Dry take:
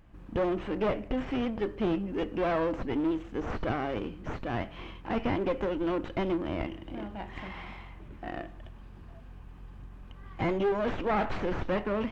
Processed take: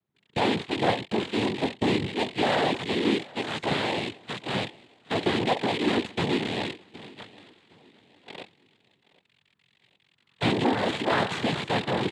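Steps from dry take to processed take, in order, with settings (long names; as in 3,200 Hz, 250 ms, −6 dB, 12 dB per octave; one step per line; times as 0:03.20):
loose part that buzzes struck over −42 dBFS, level −23 dBFS
noise gate −33 dBFS, range −27 dB
cochlear-implant simulation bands 6
on a send: repeating echo 764 ms, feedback 39%, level −23 dB
on the sum: level +4 dB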